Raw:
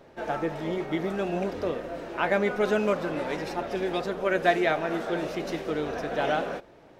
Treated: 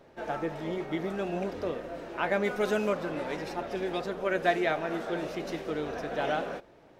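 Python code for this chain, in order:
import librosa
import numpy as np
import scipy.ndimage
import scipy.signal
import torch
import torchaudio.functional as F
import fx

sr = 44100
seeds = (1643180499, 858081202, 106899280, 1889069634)

y = fx.high_shelf(x, sr, hz=fx.line((2.43, 4600.0), (2.87, 7000.0)), db=9.0, at=(2.43, 2.87), fade=0.02)
y = F.gain(torch.from_numpy(y), -3.5).numpy()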